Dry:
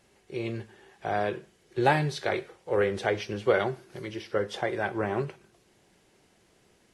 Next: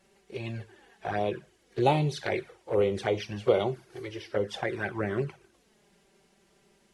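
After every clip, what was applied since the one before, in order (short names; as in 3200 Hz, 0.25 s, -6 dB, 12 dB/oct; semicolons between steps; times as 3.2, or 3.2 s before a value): envelope flanger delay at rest 5.3 ms, full sweep at -23 dBFS; gain +1.5 dB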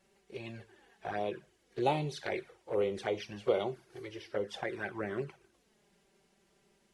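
dynamic EQ 100 Hz, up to -7 dB, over -46 dBFS, Q 0.99; gain -5.5 dB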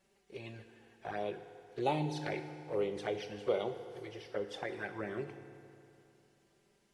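FDN reverb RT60 2.8 s, high-frequency decay 0.75×, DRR 8.5 dB; gain -3 dB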